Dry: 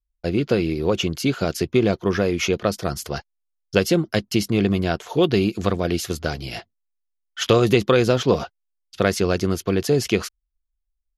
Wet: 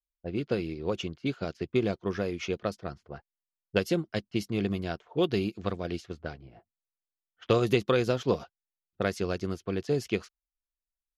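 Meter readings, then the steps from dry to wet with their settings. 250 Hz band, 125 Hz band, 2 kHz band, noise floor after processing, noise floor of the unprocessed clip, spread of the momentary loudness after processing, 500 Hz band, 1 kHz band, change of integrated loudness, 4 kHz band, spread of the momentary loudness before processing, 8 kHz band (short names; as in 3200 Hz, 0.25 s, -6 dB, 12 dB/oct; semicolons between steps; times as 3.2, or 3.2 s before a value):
-9.5 dB, -10.0 dB, -10.0 dB, under -85 dBFS, -77 dBFS, 12 LU, -9.0 dB, -9.5 dB, -9.5 dB, -11.5 dB, 11 LU, -17.0 dB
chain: low-pass opened by the level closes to 320 Hz, open at -16 dBFS; upward expander 1.5:1, over -35 dBFS; gain -7 dB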